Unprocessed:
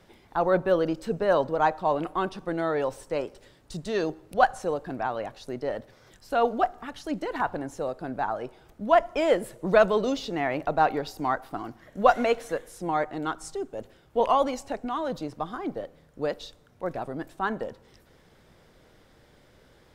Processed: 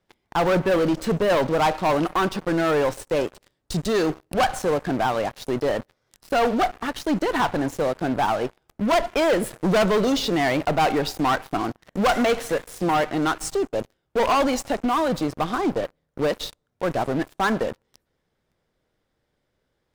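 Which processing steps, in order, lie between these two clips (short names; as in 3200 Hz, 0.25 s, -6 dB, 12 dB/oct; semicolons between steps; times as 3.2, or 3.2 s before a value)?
dynamic EQ 550 Hz, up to -3 dB, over -32 dBFS, Q 1.1; sample leveller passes 5; gain -7 dB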